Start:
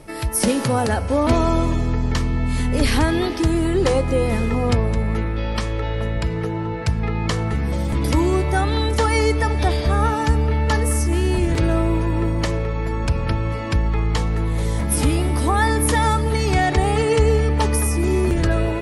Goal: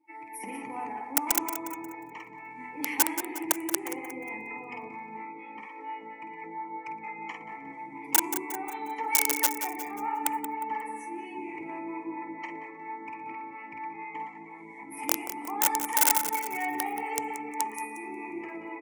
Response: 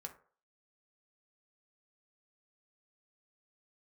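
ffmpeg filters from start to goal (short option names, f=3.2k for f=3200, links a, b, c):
-filter_complex "[0:a]asplit=3[a][b][c];[a]bandpass=f=300:t=q:w=8,volume=0dB[d];[b]bandpass=f=870:t=q:w=8,volume=-6dB[e];[c]bandpass=f=2.24k:t=q:w=8,volume=-9dB[f];[d][e][f]amix=inputs=3:normalize=0,equalizer=f=1.8k:w=2.9:g=13.5,asplit=2[g][h];[h]aecho=0:1:50|115|199.5|309.4|452.2:0.631|0.398|0.251|0.158|0.1[i];[g][i]amix=inputs=2:normalize=0,acrossover=split=570[j][k];[j]aeval=exprs='val(0)*(1-0.5/2+0.5/2*cos(2*PI*4.3*n/s))':c=same[l];[k]aeval=exprs='val(0)*(1-0.5/2-0.5/2*cos(2*PI*4.3*n/s))':c=same[m];[l][m]amix=inputs=2:normalize=0,bandreject=f=60:t=h:w=6,bandreject=f=120:t=h:w=6,bandreject=f=180:t=h:w=6,bandreject=f=240:t=h:w=6,bandreject=f=300:t=h:w=6,bandreject=f=360:t=h:w=6,bandreject=f=420:t=h:w=6,aeval=exprs='(mod(9.44*val(0)+1,2)-1)/9.44':c=same,highpass=170,lowshelf=f=390:t=q:w=1.5:g=-7.5,asplit=2[n][o];[o]aecho=0:1:179|358|537|716|895|1074:0.299|0.155|0.0807|0.042|0.0218|0.0114[p];[n][p]amix=inputs=2:normalize=0,aexciter=amount=6.9:drive=2.2:freq=5.9k,afftdn=nr=18:nf=-48,volume=-1dB"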